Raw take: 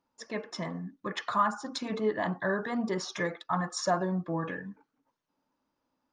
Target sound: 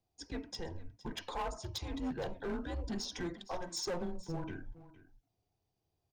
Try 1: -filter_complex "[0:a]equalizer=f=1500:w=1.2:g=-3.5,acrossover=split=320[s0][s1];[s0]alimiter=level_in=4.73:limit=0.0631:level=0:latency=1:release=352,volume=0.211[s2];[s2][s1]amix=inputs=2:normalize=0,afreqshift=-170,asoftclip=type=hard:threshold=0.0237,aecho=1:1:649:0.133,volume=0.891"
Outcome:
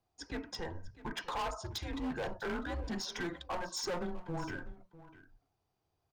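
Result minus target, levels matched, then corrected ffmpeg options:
echo 186 ms late; 2 kHz band +5.0 dB
-filter_complex "[0:a]equalizer=f=1500:w=1.2:g=-14,acrossover=split=320[s0][s1];[s0]alimiter=level_in=4.73:limit=0.0631:level=0:latency=1:release=352,volume=0.211[s2];[s2][s1]amix=inputs=2:normalize=0,afreqshift=-170,asoftclip=type=hard:threshold=0.0237,aecho=1:1:463:0.133,volume=0.891"

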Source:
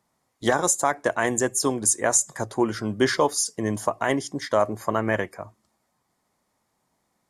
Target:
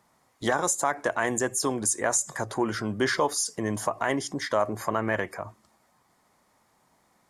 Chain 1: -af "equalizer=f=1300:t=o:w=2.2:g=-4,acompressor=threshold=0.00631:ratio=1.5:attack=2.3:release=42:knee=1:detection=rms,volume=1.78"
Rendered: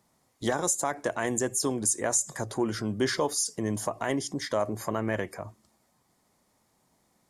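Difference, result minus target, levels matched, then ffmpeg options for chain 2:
1 kHz band -3.5 dB
-af "equalizer=f=1300:t=o:w=2.2:g=4,acompressor=threshold=0.00631:ratio=1.5:attack=2.3:release=42:knee=1:detection=rms,volume=1.78"

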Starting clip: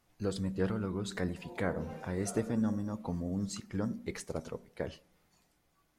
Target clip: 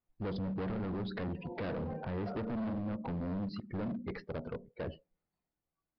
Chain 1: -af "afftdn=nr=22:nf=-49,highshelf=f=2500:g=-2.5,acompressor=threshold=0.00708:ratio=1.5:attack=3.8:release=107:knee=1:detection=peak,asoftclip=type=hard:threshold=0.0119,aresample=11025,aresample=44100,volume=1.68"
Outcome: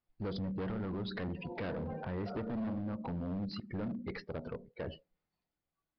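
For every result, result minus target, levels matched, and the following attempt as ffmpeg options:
4 kHz band +4.5 dB; compression: peak gain reduction +3.5 dB
-af "afftdn=nr=22:nf=-49,highshelf=f=2500:g=-12.5,acompressor=threshold=0.00708:ratio=1.5:attack=3.8:release=107:knee=1:detection=peak,asoftclip=type=hard:threshold=0.0119,aresample=11025,aresample=44100,volume=1.68"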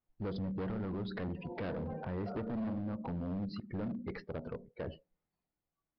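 compression: peak gain reduction +3.5 dB
-af "afftdn=nr=22:nf=-49,highshelf=f=2500:g=-12.5,acompressor=threshold=0.0224:ratio=1.5:attack=3.8:release=107:knee=1:detection=peak,asoftclip=type=hard:threshold=0.0119,aresample=11025,aresample=44100,volume=1.68"

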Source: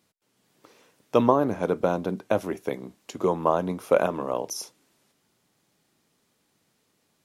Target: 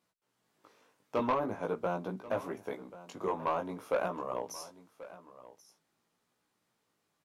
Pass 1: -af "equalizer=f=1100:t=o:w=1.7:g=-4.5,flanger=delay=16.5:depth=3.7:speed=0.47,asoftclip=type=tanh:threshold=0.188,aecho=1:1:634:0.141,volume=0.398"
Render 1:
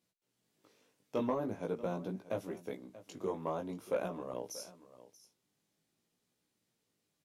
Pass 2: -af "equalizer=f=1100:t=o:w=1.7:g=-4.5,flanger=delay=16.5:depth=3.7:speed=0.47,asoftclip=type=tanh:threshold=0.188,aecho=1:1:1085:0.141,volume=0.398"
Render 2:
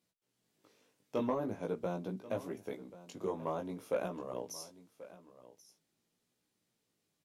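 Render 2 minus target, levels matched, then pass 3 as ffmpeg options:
1 kHz band -4.5 dB
-af "equalizer=f=1100:t=o:w=1.7:g=6.5,flanger=delay=16.5:depth=3.7:speed=0.47,asoftclip=type=tanh:threshold=0.188,aecho=1:1:1085:0.141,volume=0.398"

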